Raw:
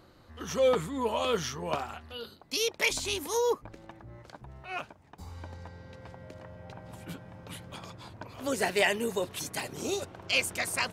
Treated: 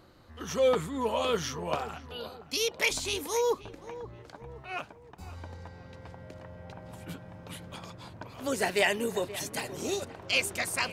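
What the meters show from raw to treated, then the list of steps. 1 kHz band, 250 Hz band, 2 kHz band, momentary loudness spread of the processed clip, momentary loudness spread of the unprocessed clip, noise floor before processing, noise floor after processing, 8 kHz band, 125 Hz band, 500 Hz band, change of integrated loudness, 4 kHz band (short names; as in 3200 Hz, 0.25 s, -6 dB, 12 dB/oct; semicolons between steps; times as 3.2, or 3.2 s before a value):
0.0 dB, 0.0 dB, 0.0 dB, 20 LU, 21 LU, -58 dBFS, -52 dBFS, 0.0 dB, +0.5 dB, 0.0 dB, 0.0 dB, 0.0 dB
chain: darkening echo 0.527 s, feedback 48%, low-pass 1700 Hz, level -14.5 dB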